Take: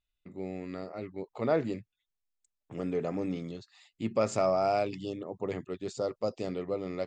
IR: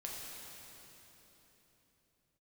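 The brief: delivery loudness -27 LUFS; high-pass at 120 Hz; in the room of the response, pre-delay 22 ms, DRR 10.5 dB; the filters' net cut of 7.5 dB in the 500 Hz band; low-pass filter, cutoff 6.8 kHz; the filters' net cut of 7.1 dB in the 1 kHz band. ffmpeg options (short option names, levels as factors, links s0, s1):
-filter_complex "[0:a]highpass=120,lowpass=6800,equalizer=f=500:t=o:g=-7,equalizer=f=1000:t=o:g=-7.5,asplit=2[s0][s1];[1:a]atrim=start_sample=2205,adelay=22[s2];[s1][s2]afir=irnorm=-1:irlink=0,volume=0.316[s3];[s0][s3]amix=inputs=2:normalize=0,volume=3.76"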